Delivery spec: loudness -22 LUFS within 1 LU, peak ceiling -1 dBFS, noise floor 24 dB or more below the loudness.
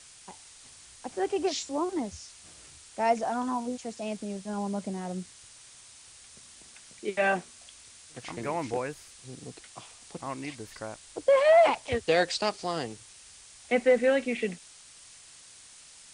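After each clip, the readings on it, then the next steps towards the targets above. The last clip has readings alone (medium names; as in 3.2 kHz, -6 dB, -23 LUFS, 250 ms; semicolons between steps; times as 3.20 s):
noise floor -52 dBFS; noise floor target -53 dBFS; loudness -28.5 LUFS; peak level -12.5 dBFS; loudness target -22.0 LUFS
-> noise reduction 6 dB, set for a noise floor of -52 dBFS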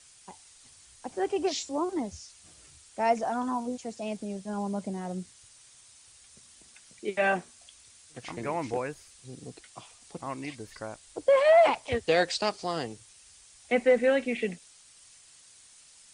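noise floor -56 dBFS; loudness -28.5 LUFS; peak level -12.5 dBFS; loudness target -22.0 LUFS
-> trim +6.5 dB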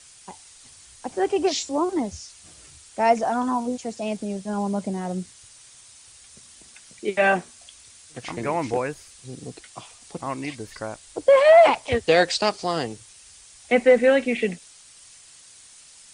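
loudness -22.0 LUFS; peak level -6.0 dBFS; noise floor -50 dBFS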